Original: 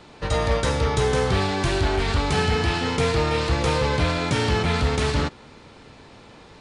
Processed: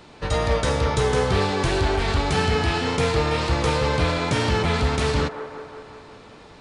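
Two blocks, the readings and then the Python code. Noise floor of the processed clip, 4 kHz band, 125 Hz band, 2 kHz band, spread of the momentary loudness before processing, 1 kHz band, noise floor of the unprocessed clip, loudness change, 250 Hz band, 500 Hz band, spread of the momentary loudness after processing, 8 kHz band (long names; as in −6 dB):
−46 dBFS, 0.0 dB, 0.0 dB, +0.5 dB, 2 LU, +1.0 dB, −47 dBFS, +0.5 dB, 0.0 dB, +1.0 dB, 6 LU, 0.0 dB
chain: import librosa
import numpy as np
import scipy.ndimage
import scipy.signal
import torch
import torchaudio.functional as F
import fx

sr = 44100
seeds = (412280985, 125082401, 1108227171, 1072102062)

y = fx.wow_flutter(x, sr, seeds[0], rate_hz=2.1, depth_cents=22.0)
y = fx.echo_wet_bandpass(y, sr, ms=182, feedback_pct=66, hz=770.0, wet_db=-8.0)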